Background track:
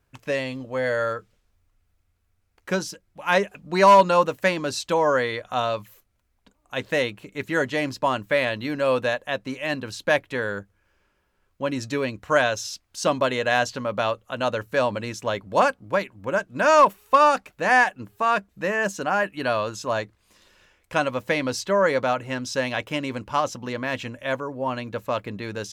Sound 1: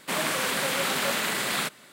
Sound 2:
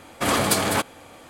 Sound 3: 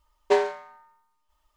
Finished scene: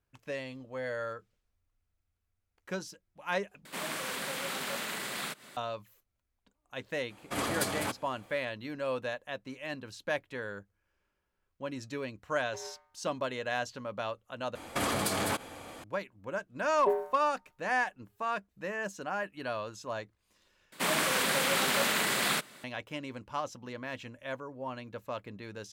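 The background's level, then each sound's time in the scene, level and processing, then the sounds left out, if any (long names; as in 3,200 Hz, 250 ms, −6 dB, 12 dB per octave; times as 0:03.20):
background track −12 dB
0:03.65: overwrite with 1 −9.5 dB + upward compression, threshold −32 dBFS
0:07.10: mix in 2 −12 dB
0:12.23: mix in 3 −17 dB + amplitude modulation by smooth noise
0:14.55: overwrite with 2 −0.5 dB + downward compressor 5 to 1, threshold −27 dBFS
0:16.56: mix in 3 −6 dB + Bessel low-pass filter 660 Hz
0:20.72: overwrite with 1 −1.5 dB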